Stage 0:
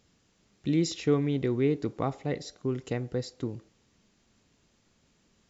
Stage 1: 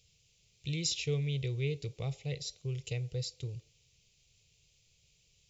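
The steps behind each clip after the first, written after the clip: EQ curve 140 Hz 0 dB, 250 Hz -28 dB, 460 Hz -8 dB, 980 Hz -21 dB, 1700 Hz -20 dB, 2400 Hz +3 dB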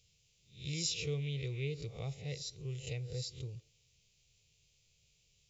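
spectral swells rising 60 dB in 0.40 s; gain -4.5 dB

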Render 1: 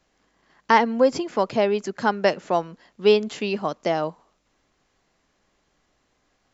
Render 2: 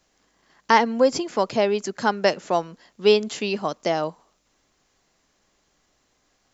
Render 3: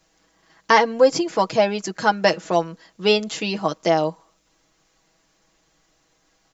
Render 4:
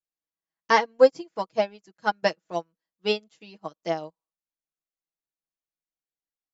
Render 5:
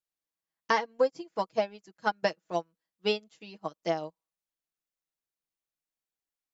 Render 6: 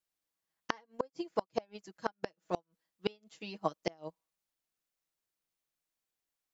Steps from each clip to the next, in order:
tone controls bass -1 dB, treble +7 dB
comb 6.2 ms, depth 69%; gain +1.5 dB
upward expander 2.5:1, over -36 dBFS
compressor 4:1, threshold -23 dBFS, peak gain reduction 11.5 dB
flipped gate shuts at -19 dBFS, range -31 dB; gain +3 dB

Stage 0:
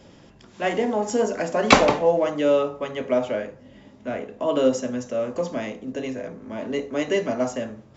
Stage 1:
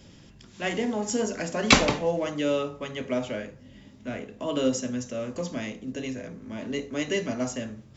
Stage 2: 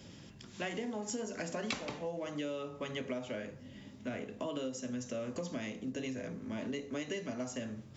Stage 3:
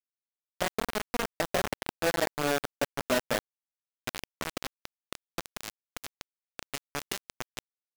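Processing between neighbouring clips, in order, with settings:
bell 700 Hz -11.5 dB 2.7 oct; gain +3 dB
HPF 77 Hz; compressor 12:1, threshold -34 dBFS, peak gain reduction 23 dB; gain -1 dB
low-pass sweep 680 Hz -> 5000 Hz, 3.76–4.44; bit-crush 5-bit; gain +4.5 dB

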